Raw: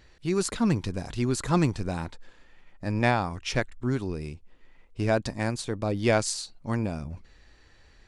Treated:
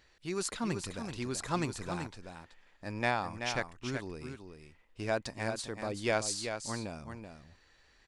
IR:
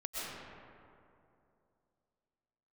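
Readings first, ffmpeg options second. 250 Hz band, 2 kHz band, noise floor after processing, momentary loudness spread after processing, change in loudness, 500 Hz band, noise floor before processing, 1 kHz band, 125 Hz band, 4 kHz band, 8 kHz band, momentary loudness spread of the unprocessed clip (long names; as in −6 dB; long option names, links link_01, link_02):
−10.5 dB, −4.0 dB, −66 dBFS, 17 LU, −7.5 dB, −7.0 dB, −57 dBFS, −5.5 dB, −12.0 dB, −4.0 dB, −4.0 dB, 13 LU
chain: -af "lowshelf=frequency=380:gain=-9.5,aecho=1:1:381:0.422,volume=-4.5dB"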